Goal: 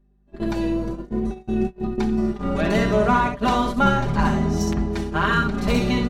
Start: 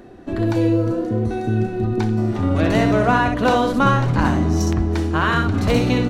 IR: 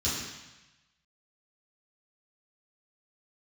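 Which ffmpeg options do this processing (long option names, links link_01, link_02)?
-af "aeval=exprs='val(0)+0.0447*(sin(2*PI*50*n/s)+sin(2*PI*2*50*n/s)/2+sin(2*PI*3*50*n/s)/3+sin(2*PI*4*50*n/s)/4+sin(2*PI*5*50*n/s)/5)':channel_layout=same,agate=range=-30dB:threshold=-19dB:ratio=16:detection=peak,aecho=1:1:5:0.92,volume=-4.5dB"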